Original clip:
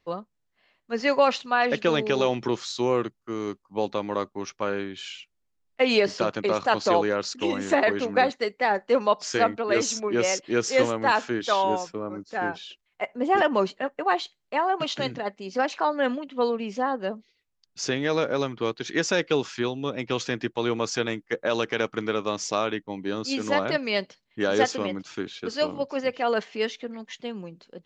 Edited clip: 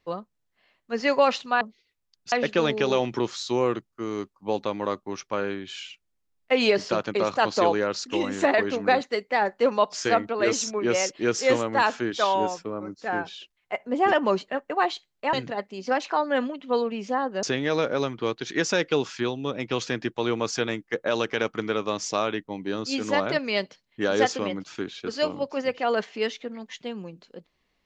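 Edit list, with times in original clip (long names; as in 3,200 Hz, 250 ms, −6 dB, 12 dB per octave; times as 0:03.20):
0:14.62–0:15.01: remove
0:17.11–0:17.82: move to 0:01.61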